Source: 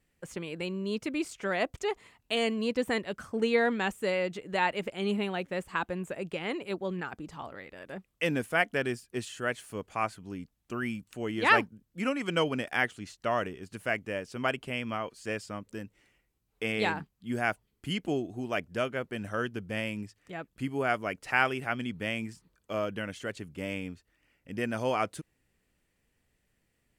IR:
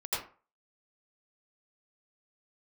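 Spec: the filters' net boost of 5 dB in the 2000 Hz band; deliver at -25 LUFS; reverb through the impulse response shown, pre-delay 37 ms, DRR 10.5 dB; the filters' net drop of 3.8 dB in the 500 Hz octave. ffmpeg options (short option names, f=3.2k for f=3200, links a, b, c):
-filter_complex "[0:a]equalizer=f=500:t=o:g=-5,equalizer=f=2k:t=o:g=6.5,asplit=2[a][b];[1:a]atrim=start_sample=2205,adelay=37[c];[b][c]afir=irnorm=-1:irlink=0,volume=-16dB[d];[a][d]amix=inputs=2:normalize=0,volume=4.5dB"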